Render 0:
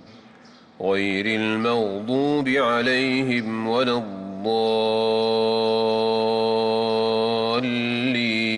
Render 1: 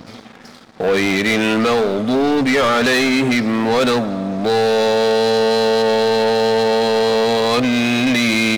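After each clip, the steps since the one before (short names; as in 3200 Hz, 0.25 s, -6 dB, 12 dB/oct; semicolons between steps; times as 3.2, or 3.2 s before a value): sample leveller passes 3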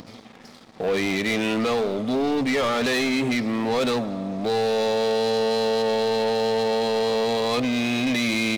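bell 1500 Hz -5 dB 0.44 oct; upward compressor, threshold -32 dBFS; gain -7 dB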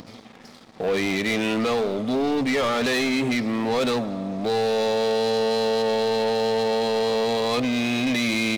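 nothing audible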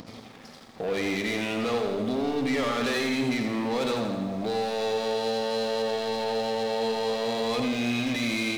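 limiter -22 dBFS, peak gain reduction 5 dB; lo-fi delay 84 ms, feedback 55%, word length 10-bit, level -6 dB; gain -1.5 dB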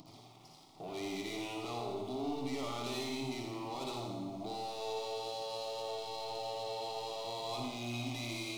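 fixed phaser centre 330 Hz, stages 8; on a send: flutter echo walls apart 10.1 m, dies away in 0.61 s; on the sum: gain -8.5 dB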